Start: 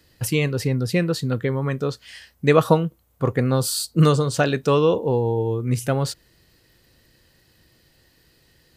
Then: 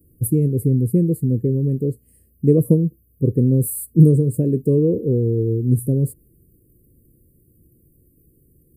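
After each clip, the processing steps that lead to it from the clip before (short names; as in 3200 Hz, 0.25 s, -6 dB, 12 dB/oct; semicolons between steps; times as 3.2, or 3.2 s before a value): inverse Chebyshev band-stop 750–6200 Hz, stop band 40 dB; gain +5.5 dB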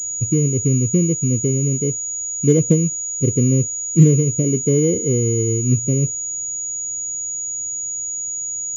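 careless resampling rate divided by 4×, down filtered, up hold; pulse-width modulation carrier 6800 Hz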